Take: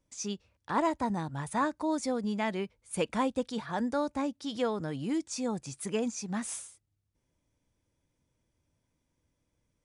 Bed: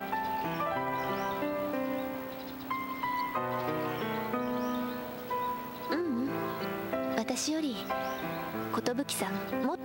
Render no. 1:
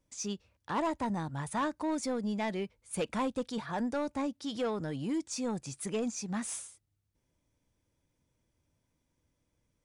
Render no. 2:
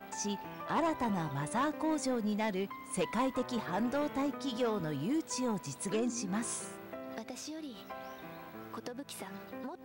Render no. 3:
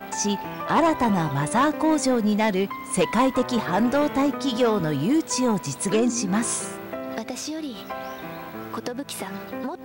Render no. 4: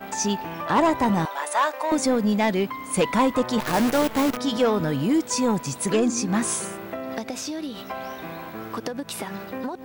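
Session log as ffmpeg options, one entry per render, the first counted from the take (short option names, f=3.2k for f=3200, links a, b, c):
-af "asoftclip=type=tanh:threshold=-25.5dB"
-filter_complex "[1:a]volume=-11.5dB[a];[0:a][a]amix=inputs=2:normalize=0"
-af "volume=12dB"
-filter_complex "[0:a]asettb=1/sr,asplit=3[a][b][c];[a]atrim=end=1.254[d];[b]atrim=start=1.25:end=1.92,asetpts=PTS-STARTPTS,afade=t=in:d=0.004:c=qsin,afade=t=out:st=0.666:d=0.004:c=qsin,highpass=f=530:w=0.5412,highpass=f=530:w=1.3066[e];[c]atrim=start=1.916[f];[d][e]acrossfade=d=0.004:c1=hsin:c2=qsin[g];[g][f]acrossfade=d=0.004:c1=qsin:c2=hsin,asettb=1/sr,asplit=3[h][i][j];[h]atrim=end=3.604[k];[i]atrim=start=3.6:end=4.37,asetpts=PTS-STARTPTS,afade=t=in:d=0.004:c=qsin,afade=t=out:st=0.766:d=0.004:c=qsin,acrusher=bits=5:dc=4:mix=0:aa=0.000001[l];[j]atrim=start=4.366[m];[k][l]acrossfade=d=0.004:c1=hsin:c2=qsin[n];[n][m]acrossfade=d=0.004:c1=qsin:c2=hsin"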